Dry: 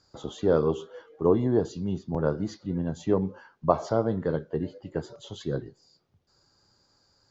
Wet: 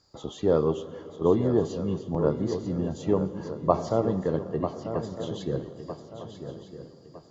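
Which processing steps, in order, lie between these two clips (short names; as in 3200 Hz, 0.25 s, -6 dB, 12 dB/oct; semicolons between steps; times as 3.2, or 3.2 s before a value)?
notch 1500 Hz, Q 6.6; swung echo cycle 1.257 s, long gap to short 3:1, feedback 33%, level -9.5 dB; reverb RT60 3.7 s, pre-delay 98 ms, DRR 15.5 dB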